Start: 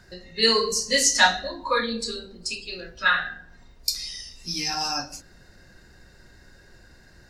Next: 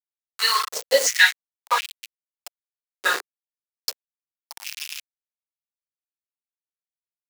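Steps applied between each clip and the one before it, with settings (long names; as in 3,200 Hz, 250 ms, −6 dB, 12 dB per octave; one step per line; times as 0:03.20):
centre clipping without the shift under −20 dBFS
high-pass on a step sequencer 2.8 Hz 400–2,600 Hz
level −1.5 dB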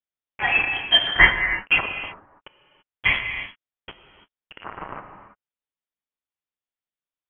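convolution reverb, pre-delay 3 ms, DRR 6.5 dB
voice inversion scrambler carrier 3,700 Hz
level +2 dB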